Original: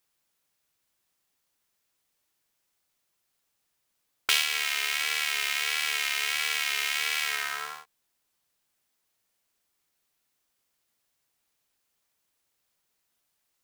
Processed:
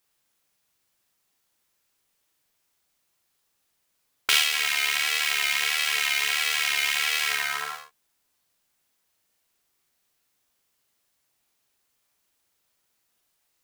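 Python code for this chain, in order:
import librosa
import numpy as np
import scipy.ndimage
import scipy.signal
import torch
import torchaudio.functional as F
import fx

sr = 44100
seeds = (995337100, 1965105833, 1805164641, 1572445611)

y = fx.room_early_taps(x, sr, ms=(41, 56), db=(-5.0, -8.0))
y = y * 10.0 ** (2.0 / 20.0)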